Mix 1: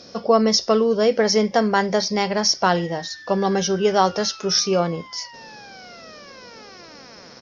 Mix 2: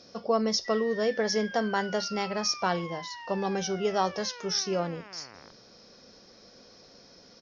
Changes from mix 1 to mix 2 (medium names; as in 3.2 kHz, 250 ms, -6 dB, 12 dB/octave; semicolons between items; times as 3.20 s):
speech -9.5 dB; background: entry -2.10 s